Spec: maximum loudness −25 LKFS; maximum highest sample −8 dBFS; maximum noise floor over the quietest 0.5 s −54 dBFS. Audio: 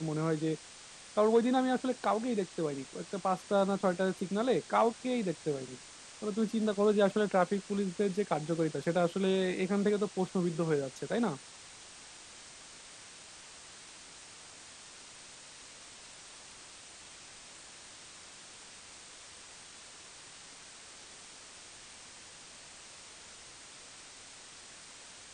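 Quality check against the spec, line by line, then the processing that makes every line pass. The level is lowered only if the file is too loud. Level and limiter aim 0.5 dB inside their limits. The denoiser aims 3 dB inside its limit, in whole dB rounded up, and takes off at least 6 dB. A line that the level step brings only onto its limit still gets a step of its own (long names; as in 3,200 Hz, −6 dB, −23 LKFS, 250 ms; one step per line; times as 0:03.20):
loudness −31.5 LKFS: in spec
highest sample −15.0 dBFS: in spec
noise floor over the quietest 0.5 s −52 dBFS: out of spec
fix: broadband denoise 6 dB, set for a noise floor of −52 dBFS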